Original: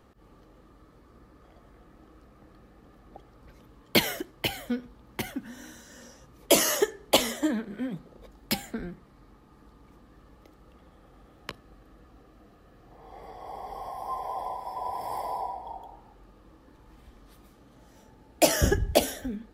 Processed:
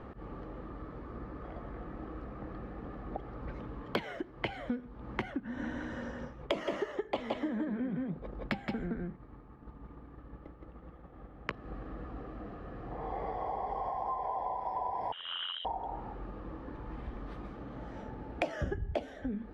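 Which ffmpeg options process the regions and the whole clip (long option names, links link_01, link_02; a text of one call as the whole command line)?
ffmpeg -i in.wav -filter_complex "[0:a]asettb=1/sr,asplit=3[link_01][link_02][link_03];[link_01]atrim=end=5.404[link_04];[link_02]atrim=start=5.4:end=11.5,asetpts=PTS-STARTPTS,afade=type=in:duration=0.004:curve=qsin,afade=type=out:start_time=6.096:duration=0.004:curve=qsin,agate=range=-33dB:threshold=-47dB:ratio=3:release=100:detection=peak,bass=frequency=250:gain=2,treble=frequency=4000:gain=-5,aecho=1:1:169:0.708,atrim=end_sample=269010[link_05];[link_03]atrim=start=11.496[link_06];[link_04][link_05]acrossfade=duration=0.004:curve1=hsin:curve2=qsin[link_07];[link_07][link_06]acrossfade=duration=0.004:curve1=qsin:curve2=hsin,asettb=1/sr,asplit=3[link_08][link_09][link_10];[link_08]atrim=end=15.124[link_11];[link_09]atrim=start=15.12:end=15.65,asetpts=PTS-STARTPTS,afade=type=in:duration=0.004:curve=qsin,afade=type=out:start_time=0.526:duration=0.004:curve=qsin,aeval=exprs='val(0)*sin(2*PI*43*n/s)':channel_layout=same,asoftclip=type=hard:threshold=-34.5dB,lowpass=frequency=3300:width_type=q:width=0.5098,lowpass=frequency=3300:width_type=q:width=0.6013,lowpass=frequency=3300:width_type=q:width=0.9,lowpass=frequency=3300:width_type=q:width=2.563,afreqshift=-3900[link_12];[link_10]atrim=start=15.646[link_13];[link_11][link_12]acrossfade=duration=0.004:curve1=hsin:curve2=qsin[link_14];[link_14][link_13]acrossfade=duration=0.004:curve1=qsin:curve2=hsin,lowpass=1900,acompressor=threshold=-45dB:ratio=6,volume=11.5dB" out.wav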